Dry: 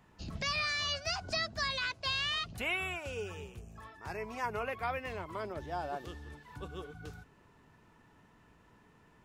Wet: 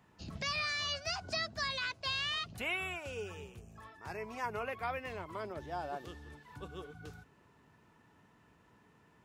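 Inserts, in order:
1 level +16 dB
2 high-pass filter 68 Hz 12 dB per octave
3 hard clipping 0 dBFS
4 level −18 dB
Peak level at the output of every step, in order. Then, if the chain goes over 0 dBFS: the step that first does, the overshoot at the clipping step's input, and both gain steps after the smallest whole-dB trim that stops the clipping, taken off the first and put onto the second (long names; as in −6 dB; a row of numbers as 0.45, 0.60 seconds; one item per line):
−5.5, −5.5, −5.5, −23.5 dBFS
no step passes full scale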